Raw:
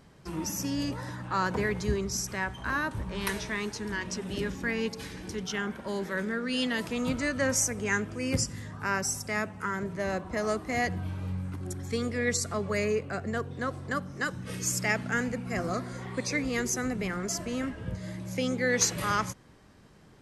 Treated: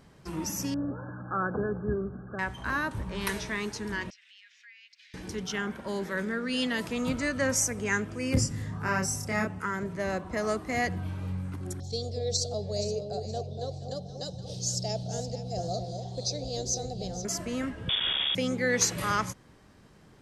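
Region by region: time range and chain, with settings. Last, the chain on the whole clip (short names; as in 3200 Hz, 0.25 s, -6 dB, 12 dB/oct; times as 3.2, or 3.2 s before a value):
0.74–2.39 brick-wall FIR low-pass 1700 Hz + notch comb 960 Hz
4.1–5.14 steep high-pass 2000 Hz + air absorption 190 m + compressor 2.5:1, threshold -55 dBFS
8.34–9.59 tilt shelf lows +3 dB, about 680 Hz + doubler 27 ms -2 dB
11.8–17.25 EQ curve 160 Hz 0 dB, 250 Hz -14 dB, 480 Hz -2 dB, 740 Hz +3 dB, 1100 Hz -25 dB, 2100 Hz -29 dB, 4000 Hz +8 dB, 6100 Hz +2 dB, 11000 Hz -17 dB + echo with dull and thin repeats by turns 0.236 s, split 840 Hz, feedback 51%, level -6 dB
17.89–18.35 companded quantiser 2-bit + inverted band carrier 3500 Hz
whole clip: dry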